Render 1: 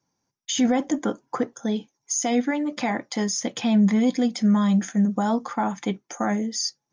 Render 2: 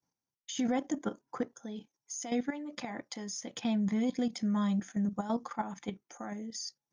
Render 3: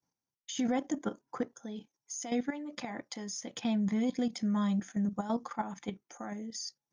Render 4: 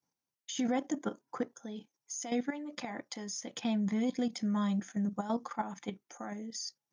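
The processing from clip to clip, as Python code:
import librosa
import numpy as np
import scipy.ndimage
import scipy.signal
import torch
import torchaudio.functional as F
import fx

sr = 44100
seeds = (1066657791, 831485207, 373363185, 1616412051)

y1 = fx.level_steps(x, sr, step_db=11)
y1 = y1 * librosa.db_to_amplitude(-7.0)
y2 = y1
y3 = fx.low_shelf(y2, sr, hz=79.0, db=-10.5)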